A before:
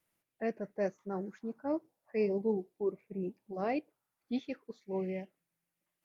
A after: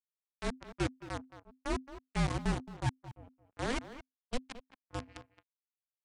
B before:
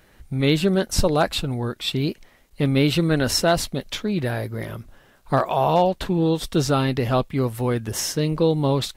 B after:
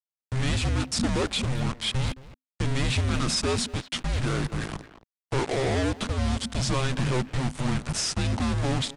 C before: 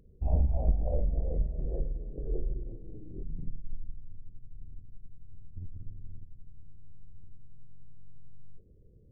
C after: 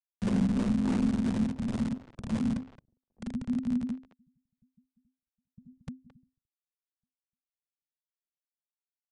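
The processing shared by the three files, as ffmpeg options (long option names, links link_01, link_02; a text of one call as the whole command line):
ffmpeg -i in.wav -filter_complex "[0:a]asplit=2[link_01][link_02];[link_02]acrusher=bits=2:mode=log:mix=0:aa=0.000001,volume=-3dB[link_03];[link_01][link_03]amix=inputs=2:normalize=0,volume=18.5dB,asoftclip=hard,volume=-18.5dB,acrusher=bits=3:mix=0:aa=0.5,aresample=22050,aresample=44100,asplit=2[link_04][link_05];[link_05]adelay=220,highpass=300,lowpass=3400,asoftclip=type=hard:threshold=-23.5dB,volume=-12dB[link_06];[link_04][link_06]amix=inputs=2:normalize=0,afreqshift=-260,volume=-6dB" out.wav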